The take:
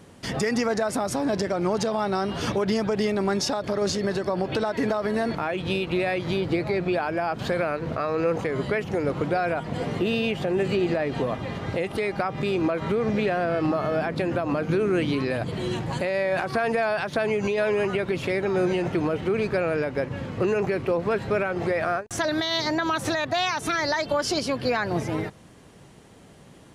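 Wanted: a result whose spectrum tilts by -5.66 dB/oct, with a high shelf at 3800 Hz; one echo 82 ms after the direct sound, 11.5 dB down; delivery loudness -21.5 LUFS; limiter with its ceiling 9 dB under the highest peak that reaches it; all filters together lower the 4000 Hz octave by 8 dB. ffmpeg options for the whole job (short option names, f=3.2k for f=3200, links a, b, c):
-af "highshelf=f=3.8k:g=-3.5,equalizer=f=4k:t=o:g=-8,alimiter=limit=-23.5dB:level=0:latency=1,aecho=1:1:82:0.266,volume=10dB"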